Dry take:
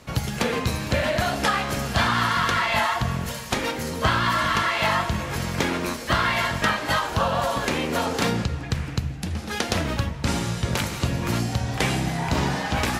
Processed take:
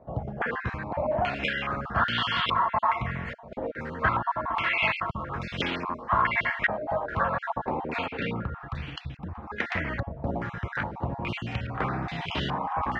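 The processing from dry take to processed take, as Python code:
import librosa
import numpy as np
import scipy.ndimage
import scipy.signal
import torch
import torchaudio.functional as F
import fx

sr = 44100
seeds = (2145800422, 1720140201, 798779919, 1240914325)

y = fx.spec_dropout(x, sr, seeds[0], share_pct=26)
y = fx.air_absorb(y, sr, metres=220.0, at=(8.06, 8.52))
y = fx.filter_held_lowpass(y, sr, hz=2.4, low_hz=690.0, high_hz=3100.0)
y = y * 10.0 ** (-7.0 / 20.0)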